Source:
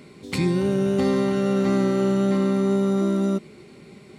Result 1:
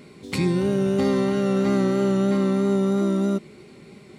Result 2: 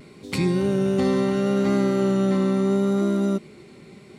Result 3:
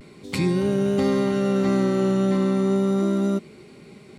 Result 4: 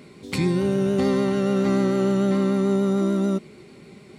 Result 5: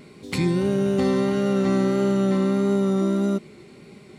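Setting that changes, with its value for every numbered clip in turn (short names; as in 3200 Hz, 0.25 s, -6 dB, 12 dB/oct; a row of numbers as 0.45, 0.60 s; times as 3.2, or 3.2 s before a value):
vibrato, rate: 3.1, 0.73, 0.33, 6.8, 1.6 Hz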